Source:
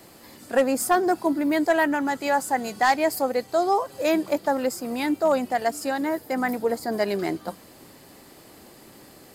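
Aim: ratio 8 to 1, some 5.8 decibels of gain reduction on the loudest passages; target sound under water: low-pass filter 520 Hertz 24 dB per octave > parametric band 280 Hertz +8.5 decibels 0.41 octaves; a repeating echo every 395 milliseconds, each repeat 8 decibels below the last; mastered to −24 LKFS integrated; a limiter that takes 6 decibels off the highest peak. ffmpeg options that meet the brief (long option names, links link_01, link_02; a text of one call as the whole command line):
ffmpeg -i in.wav -af "acompressor=threshold=-21dB:ratio=8,alimiter=limit=-19.5dB:level=0:latency=1,lowpass=frequency=520:width=0.5412,lowpass=frequency=520:width=1.3066,equalizer=frequency=280:width_type=o:width=0.41:gain=8.5,aecho=1:1:395|790|1185|1580|1975:0.398|0.159|0.0637|0.0255|0.0102,volume=2dB" out.wav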